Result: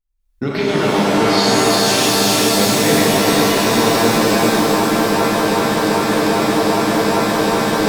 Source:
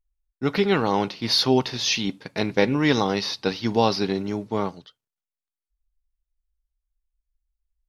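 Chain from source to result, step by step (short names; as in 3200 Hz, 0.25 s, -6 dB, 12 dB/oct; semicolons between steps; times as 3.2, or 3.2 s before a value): regenerating reverse delay 0.196 s, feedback 82%, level -1 dB; recorder AGC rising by 41 dB/s; shimmer reverb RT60 2.4 s, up +7 st, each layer -2 dB, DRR -4 dB; gain -5 dB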